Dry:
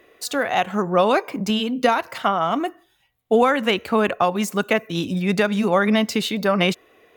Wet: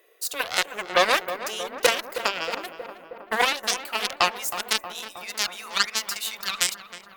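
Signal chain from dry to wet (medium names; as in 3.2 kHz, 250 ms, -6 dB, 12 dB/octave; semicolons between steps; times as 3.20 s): high-pass sweep 440 Hz -> 1.3 kHz, 2.34–5.49 s; Chebyshev shaper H 5 -25 dB, 6 -18 dB, 7 -11 dB, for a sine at 0 dBFS; RIAA curve recording; on a send: filtered feedback delay 316 ms, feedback 75%, low-pass 1.6 kHz, level -10 dB; on the sum: trim -7.5 dB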